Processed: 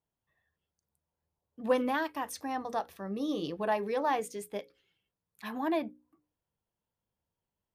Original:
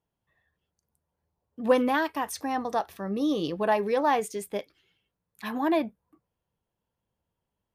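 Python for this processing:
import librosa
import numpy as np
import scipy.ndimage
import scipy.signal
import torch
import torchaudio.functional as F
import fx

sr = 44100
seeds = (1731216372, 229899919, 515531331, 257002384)

y = fx.hum_notches(x, sr, base_hz=60, count=9)
y = F.gain(torch.from_numpy(y), -5.5).numpy()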